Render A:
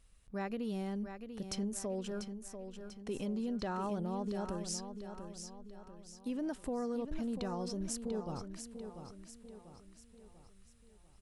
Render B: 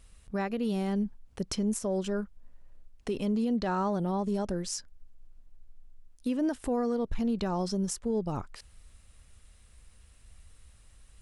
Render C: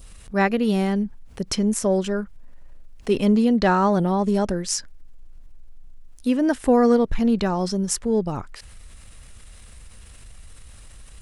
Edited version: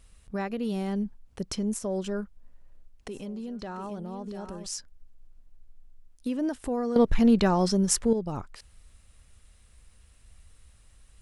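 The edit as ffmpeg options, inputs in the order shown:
-filter_complex "[1:a]asplit=3[a][b][c];[a]atrim=end=3.082[d];[0:a]atrim=start=3.078:end=4.662[e];[b]atrim=start=4.658:end=6.962[f];[2:a]atrim=start=6.958:end=8.132[g];[c]atrim=start=8.128[h];[d][e]acrossfade=d=0.004:c1=hsin:c2=hsin[i];[i][f]acrossfade=d=0.004:c1=hsin:c2=hsin[j];[j][g]acrossfade=d=0.004:c1=hsin:c2=hsin[k];[k][h]acrossfade=d=0.004:c1=hsin:c2=hsin"

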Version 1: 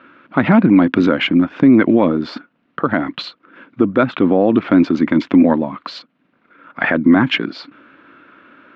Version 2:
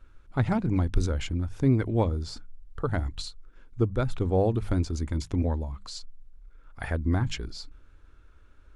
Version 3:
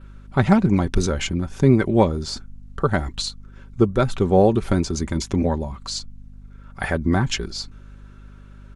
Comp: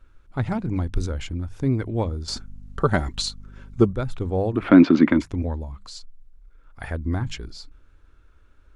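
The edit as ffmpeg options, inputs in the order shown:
-filter_complex "[1:a]asplit=3[a][b][c];[a]atrim=end=2.282[d];[2:a]atrim=start=2.278:end=3.932[e];[b]atrim=start=3.928:end=4.74[f];[0:a]atrim=start=4.5:end=5.3[g];[c]atrim=start=5.06[h];[d][e]acrossfade=d=0.004:c1=hsin:c2=hsin[i];[i][f]acrossfade=d=0.004:c1=hsin:c2=hsin[j];[j][g]acrossfade=d=0.24:c1=tri:c2=tri[k];[k][h]acrossfade=d=0.24:c1=tri:c2=tri"

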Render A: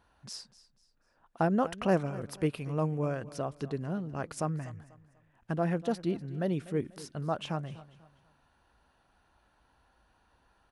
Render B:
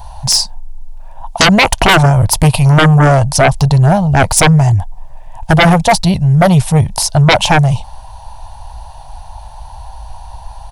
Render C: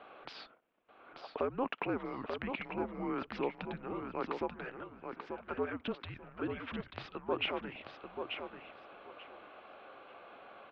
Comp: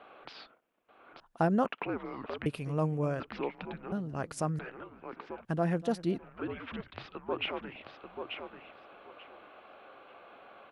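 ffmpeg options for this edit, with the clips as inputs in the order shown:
-filter_complex "[0:a]asplit=4[a][b][c][d];[2:a]asplit=5[e][f][g][h][i];[e]atrim=end=1.202[j];[a]atrim=start=1.198:end=1.662[k];[f]atrim=start=1.658:end=2.462[l];[b]atrim=start=2.458:end=3.202[m];[g]atrim=start=3.198:end=3.922[n];[c]atrim=start=3.918:end=4.592[o];[h]atrim=start=4.588:end=5.452[p];[d]atrim=start=5.448:end=6.182[q];[i]atrim=start=6.178[r];[j][k]acrossfade=d=0.004:c1=hsin:c2=hsin[s];[s][l]acrossfade=d=0.004:c1=hsin:c2=hsin[t];[t][m]acrossfade=d=0.004:c1=hsin:c2=hsin[u];[u][n]acrossfade=d=0.004:c1=hsin:c2=hsin[v];[v][o]acrossfade=d=0.004:c1=hsin:c2=hsin[w];[w][p]acrossfade=d=0.004:c1=hsin:c2=hsin[x];[x][q]acrossfade=d=0.004:c1=hsin:c2=hsin[y];[y][r]acrossfade=d=0.004:c1=hsin:c2=hsin"

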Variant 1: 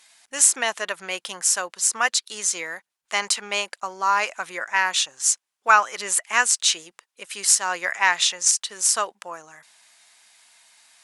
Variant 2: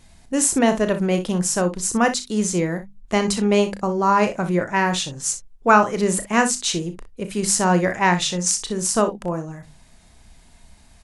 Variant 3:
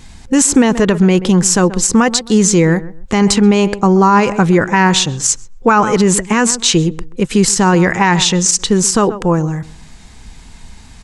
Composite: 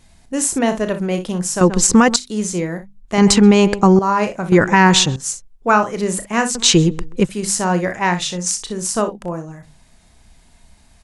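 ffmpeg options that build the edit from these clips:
-filter_complex "[2:a]asplit=4[a][b][c][d];[1:a]asplit=5[e][f][g][h][i];[e]atrim=end=1.612[j];[a]atrim=start=1.608:end=2.162[k];[f]atrim=start=2.158:end=3.182[l];[b]atrim=start=3.178:end=3.992[m];[g]atrim=start=3.988:end=4.522[n];[c]atrim=start=4.518:end=5.162[o];[h]atrim=start=5.158:end=6.552[p];[d]atrim=start=6.548:end=7.292[q];[i]atrim=start=7.288[r];[j][k]acrossfade=d=0.004:c1=hsin:c2=hsin[s];[s][l]acrossfade=d=0.004:c1=hsin:c2=hsin[t];[t][m]acrossfade=d=0.004:c1=hsin:c2=hsin[u];[u][n]acrossfade=d=0.004:c1=hsin:c2=hsin[v];[v][o]acrossfade=d=0.004:c1=hsin:c2=hsin[w];[w][p]acrossfade=d=0.004:c1=hsin:c2=hsin[x];[x][q]acrossfade=d=0.004:c1=hsin:c2=hsin[y];[y][r]acrossfade=d=0.004:c1=hsin:c2=hsin"

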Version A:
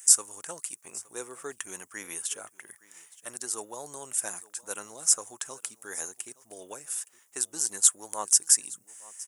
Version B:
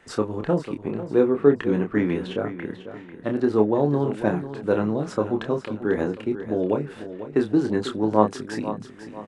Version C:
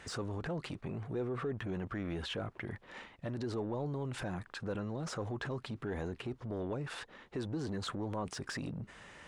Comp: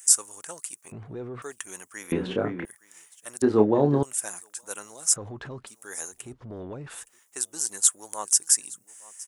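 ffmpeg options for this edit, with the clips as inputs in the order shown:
-filter_complex "[2:a]asplit=3[a][b][c];[1:a]asplit=2[d][e];[0:a]asplit=6[f][g][h][i][j][k];[f]atrim=end=0.922[l];[a]atrim=start=0.918:end=1.422[m];[g]atrim=start=1.418:end=2.122[n];[d]atrim=start=2.118:end=2.652[o];[h]atrim=start=2.648:end=3.422[p];[e]atrim=start=3.418:end=4.032[q];[i]atrim=start=4.028:end=5.162[r];[b]atrim=start=5.158:end=5.672[s];[j]atrim=start=5.668:end=6.35[t];[c]atrim=start=6.11:end=7.12[u];[k]atrim=start=6.88[v];[l][m]acrossfade=d=0.004:c1=hsin:c2=hsin[w];[w][n]acrossfade=d=0.004:c1=hsin:c2=hsin[x];[x][o]acrossfade=d=0.004:c1=hsin:c2=hsin[y];[y][p]acrossfade=d=0.004:c1=hsin:c2=hsin[z];[z][q]acrossfade=d=0.004:c1=hsin:c2=hsin[aa];[aa][r]acrossfade=d=0.004:c1=hsin:c2=hsin[ab];[ab][s]acrossfade=d=0.004:c1=hsin:c2=hsin[ac];[ac][t]acrossfade=d=0.004:c1=hsin:c2=hsin[ad];[ad][u]acrossfade=d=0.24:c1=tri:c2=tri[ae];[ae][v]acrossfade=d=0.24:c1=tri:c2=tri"

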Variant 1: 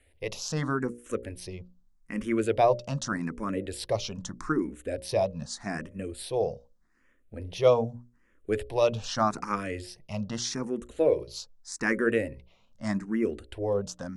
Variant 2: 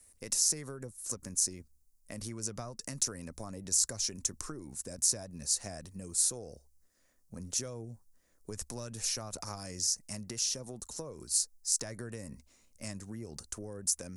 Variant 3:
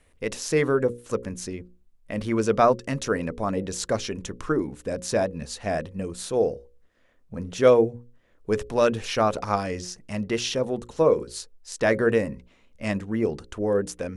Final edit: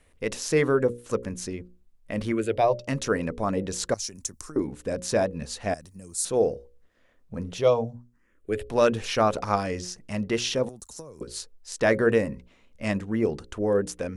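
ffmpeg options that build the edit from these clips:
-filter_complex "[0:a]asplit=2[a][b];[1:a]asplit=3[c][d][e];[2:a]asplit=6[f][g][h][i][j][k];[f]atrim=end=2.322[l];[a]atrim=start=2.318:end=2.882[m];[g]atrim=start=2.878:end=3.942[n];[c]atrim=start=3.938:end=4.562[o];[h]atrim=start=4.558:end=5.742[p];[d]atrim=start=5.738:end=6.252[q];[i]atrim=start=6.248:end=7.66[r];[b]atrim=start=7.5:end=8.75[s];[j]atrim=start=8.59:end=10.692[t];[e]atrim=start=10.688:end=11.212[u];[k]atrim=start=11.208[v];[l][m]acrossfade=d=0.004:c1=hsin:c2=hsin[w];[w][n]acrossfade=d=0.004:c1=hsin:c2=hsin[x];[x][o]acrossfade=d=0.004:c1=hsin:c2=hsin[y];[y][p]acrossfade=d=0.004:c1=hsin:c2=hsin[z];[z][q]acrossfade=d=0.004:c1=hsin:c2=hsin[aa];[aa][r]acrossfade=d=0.004:c1=hsin:c2=hsin[ab];[ab][s]acrossfade=d=0.16:c1=tri:c2=tri[ac];[ac][t]acrossfade=d=0.16:c1=tri:c2=tri[ad];[ad][u]acrossfade=d=0.004:c1=hsin:c2=hsin[ae];[ae][v]acrossfade=d=0.004:c1=hsin:c2=hsin"

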